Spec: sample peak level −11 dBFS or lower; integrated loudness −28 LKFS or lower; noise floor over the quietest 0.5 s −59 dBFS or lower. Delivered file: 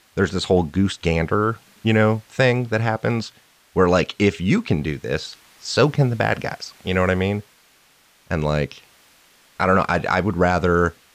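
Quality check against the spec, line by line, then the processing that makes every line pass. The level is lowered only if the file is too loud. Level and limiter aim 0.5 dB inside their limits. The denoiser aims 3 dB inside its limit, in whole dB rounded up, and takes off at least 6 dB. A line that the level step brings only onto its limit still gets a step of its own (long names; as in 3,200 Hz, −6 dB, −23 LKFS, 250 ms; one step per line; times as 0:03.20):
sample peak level −5.0 dBFS: out of spec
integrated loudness −20.5 LKFS: out of spec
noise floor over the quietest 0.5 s −56 dBFS: out of spec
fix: level −8 dB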